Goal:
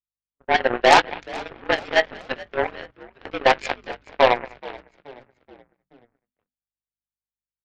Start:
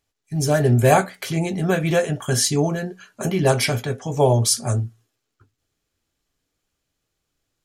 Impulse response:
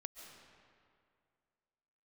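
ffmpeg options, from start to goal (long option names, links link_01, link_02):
-filter_complex "[0:a]asplit=2[link_01][link_02];[link_02]adelay=203,lowpass=frequency=1600:poles=1,volume=-10dB,asplit=2[link_03][link_04];[link_04]adelay=203,lowpass=frequency=1600:poles=1,volume=0.44,asplit=2[link_05][link_06];[link_06]adelay=203,lowpass=frequency=1600:poles=1,volume=0.44,asplit=2[link_07][link_08];[link_08]adelay=203,lowpass=frequency=1600:poles=1,volume=0.44,asplit=2[link_09][link_10];[link_10]adelay=203,lowpass=frequency=1600:poles=1,volume=0.44[link_11];[link_03][link_05][link_07][link_09][link_11]amix=inputs=5:normalize=0[link_12];[link_01][link_12]amix=inputs=2:normalize=0,highpass=frequency=210:width_type=q:width=0.5412,highpass=frequency=210:width_type=q:width=1.307,lowpass=frequency=2300:width_type=q:width=0.5176,lowpass=frequency=2300:width_type=q:width=0.7071,lowpass=frequency=2300:width_type=q:width=1.932,afreqshift=120,aeval=exprs='0.631*(cos(1*acos(clip(val(0)/0.631,-1,1)))-cos(1*PI/2))+0.00398*(cos(3*acos(clip(val(0)/0.631,-1,1)))-cos(3*PI/2))+0.02*(cos(4*acos(clip(val(0)/0.631,-1,1)))-cos(4*PI/2))+0.0891*(cos(7*acos(clip(val(0)/0.631,-1,1)))-cos(7*PI/2))':channel_layout=same,acontrast=35,aeval=exprs='val(0)+0.00224*(sin(2*PI*50*n/s)+sin(2*PI*2*50*n/s)/2+sin(2*PI*3*50*n/s)/3+sin(2*PI*4*50*n/s)/4+sin(2*PI*5*50*n/s)/5)':channel_layout=same,agate=range=-50dB:threshold=-41dB:ratio=16:detection=peak,asplit=2[link_13][link_14];[link_14]asplit=4[link_15][link_16][link_17][link_18];[link_15]adelay=428,afreqshift=-63,volume=-20.5dB[link_19];[link_16]adelay=856,afreqshift=-126,volume=-26.3dB[link_20];[link_17]adelay=1284,afreqshift=-189,volume=-32.2dB[link_21];[link_18]adelay=1712,afreqshift=-252,volume=-38dB[link_22];[link_19][link_20][link_21][link_22]amix=inputs=4:normalize=0[link_23];[link_13][link_23]amix=inputs=2:normalize=0,adynamicequalizer=threshold=0.00631:dfrequency=1600:dqfactor=0.7:tfrequency=1600:tqfactor=0.7:attack=5:release=100:ratio=0.375:range=3:mode=boostabove:tftype=highshelf,volume=-2dB"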